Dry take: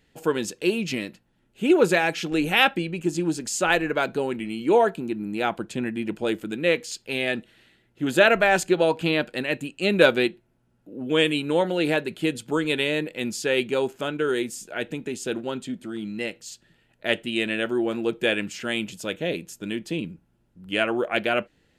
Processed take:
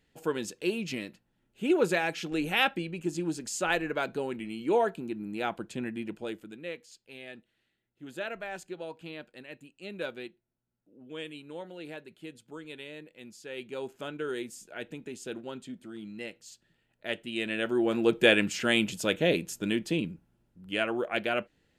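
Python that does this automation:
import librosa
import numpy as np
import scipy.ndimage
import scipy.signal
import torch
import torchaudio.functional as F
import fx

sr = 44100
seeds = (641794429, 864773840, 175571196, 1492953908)

y = fx.gain(x, sr, db=fx.line((5.97, -7.0), (6.84, -19.5), (13.42, -19.5), (13.97, -10.0), (17.18, -10.0), (18.15, 2.0), (19.56, 2.0), (20.77, -6.0)))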